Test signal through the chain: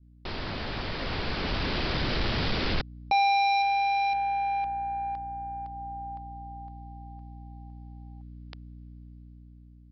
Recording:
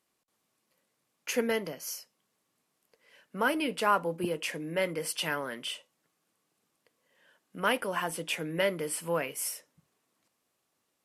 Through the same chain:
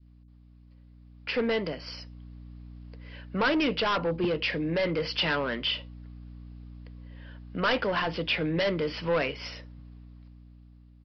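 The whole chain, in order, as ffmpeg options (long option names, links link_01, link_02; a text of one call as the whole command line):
ffmpeg -i in.wav -af "aeval=exprs='val(0)+0.00224*(sin(2*PI*60*n/s)+sin(2*PI*2*60*n/s)/2+sin(2*PI*3*60*n/s)/3+sin(2*PI*4*60*n/s)/4+sin(2*PI*5*60*n/s)/5)':channel_layout=same,dynaudnorm=framelen=450:gausssize=7:maxgain=11dB,aresample=11025,asoftclip=type=tanh:threshold=-20.5dB,aresample=44100,adynamicequalizer=threshold=0.0158:dfrequency=900:dqfactor=0.75:tfrequency=900:tqfactor=0.75:attack=5:release=100:ratio=0.375:range=2.5:mode=cutabove:tftype=bell" out.wav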